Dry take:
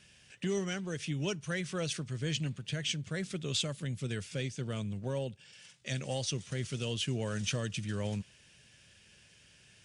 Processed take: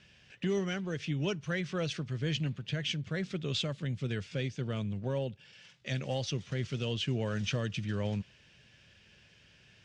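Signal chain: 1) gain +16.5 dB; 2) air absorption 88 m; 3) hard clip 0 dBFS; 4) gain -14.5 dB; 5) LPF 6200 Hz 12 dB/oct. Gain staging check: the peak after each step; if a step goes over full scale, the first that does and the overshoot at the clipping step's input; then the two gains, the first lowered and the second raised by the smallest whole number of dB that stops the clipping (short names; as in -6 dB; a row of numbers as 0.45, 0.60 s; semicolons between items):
-3.5, -6.0, -6.0, -20.5, -20.5 dBFS; no overload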